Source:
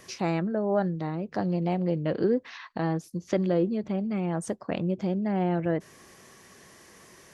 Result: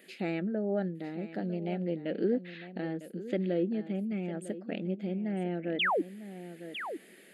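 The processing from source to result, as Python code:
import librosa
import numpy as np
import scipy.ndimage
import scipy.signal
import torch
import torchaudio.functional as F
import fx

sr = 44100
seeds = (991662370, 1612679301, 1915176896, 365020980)

p1 = fx.brickwall_highpass(x, sr, low_hz=170.0)
p2 = fx.fixed_phaser(p1, sr, hz=2500.0, stages=4)
p3 = fx.spec_paint(p2, sr, seeds[0], shape='fall', start_s=5.79, length_s=0.23, low_hz=270.0, high_hz=3700.0, level_db=-24.0)
p4 = p3 + fx.echo_single(p3, sr, ms=952, db=-13.0, dry=0)
p5 = fx.rider(p4, sr, range_db=5, speed_s=2.0)
y = p5 * librosa.db_to_amplitude(-4.0)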